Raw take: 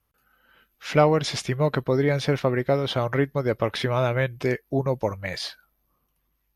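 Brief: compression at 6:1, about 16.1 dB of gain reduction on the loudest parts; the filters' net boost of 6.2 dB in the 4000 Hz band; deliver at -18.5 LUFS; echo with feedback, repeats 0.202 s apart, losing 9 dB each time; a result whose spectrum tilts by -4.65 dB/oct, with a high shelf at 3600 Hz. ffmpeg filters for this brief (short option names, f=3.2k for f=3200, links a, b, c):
-af "highshelf=f=3.6k:g=4,equalizer=f=4k:t=o:g=5,acompressor=threshold=-30dB:ratio=6,aecho=1:1:202|404|606|808:0.355|0.124|0.0435|0.0152,volume=14.5dB"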